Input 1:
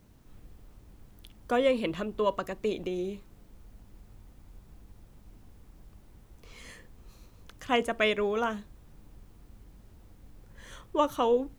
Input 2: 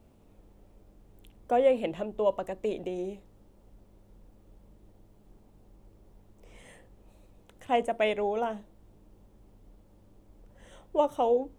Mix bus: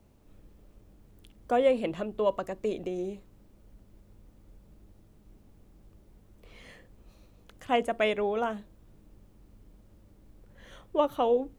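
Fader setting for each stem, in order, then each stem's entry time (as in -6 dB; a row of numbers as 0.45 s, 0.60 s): -7.0 dB, -4.0 dB; 0.00 s, 0.00 s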